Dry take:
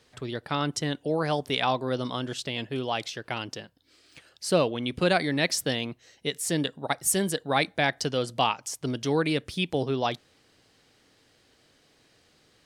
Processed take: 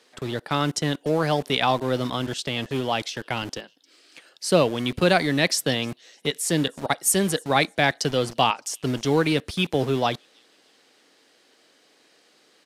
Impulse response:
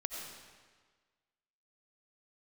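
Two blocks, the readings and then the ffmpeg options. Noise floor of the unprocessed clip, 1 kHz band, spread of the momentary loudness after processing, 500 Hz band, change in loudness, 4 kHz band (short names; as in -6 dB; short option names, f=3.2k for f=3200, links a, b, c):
-64 dBFS, +4.0 dB, 9 LU, +4.0 dB, +4.0 dB, +4.0 dB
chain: -filter_complex "[0:a]lowshelf=f=63:g=5,acrossover=split=220|3200[a][b][c];[a]acrusher=bits=6:mix=0:aa=0.000001[d];[c]asplit=2[e][f];[f]adelay=306,lowpass=f=4.4k:p=1,volume=-20dB,asplit=2[g][h];[h]adelay=306,lowpass=f=4.4k:p=1,volume=0.51,asplit=2[i][j];[j]adelay=306,lowpass=f=4.4k:p=1,volume=0.51,asplit=2[k][l];[l]adelay=306,lowpass=f=4.4k:p=1,volume=0.51[m];[e][g][i][k][m]amix=inputs=5:normalize=0[n];[d][b][n]amix=inputs=3:normalize=0,aresample=32000,aresample=44100,volume=4dB"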